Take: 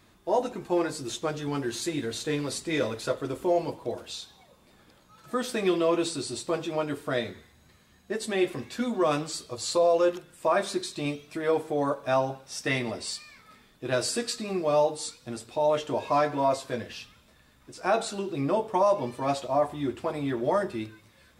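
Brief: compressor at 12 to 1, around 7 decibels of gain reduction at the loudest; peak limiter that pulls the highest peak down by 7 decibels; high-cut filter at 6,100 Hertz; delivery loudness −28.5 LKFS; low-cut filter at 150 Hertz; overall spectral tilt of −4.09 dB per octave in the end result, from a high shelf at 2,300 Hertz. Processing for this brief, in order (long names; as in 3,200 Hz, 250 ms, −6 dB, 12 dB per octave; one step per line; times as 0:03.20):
high-pass filter 150 Hz
low-pass filter 6,100 Hz
high-shelf EQ 2,300 Hz −4.5 dB
downward compressor 12 to 1, threshold −26 dBFS
level +6.5 dB
brickwall limiter −17.5 dBFS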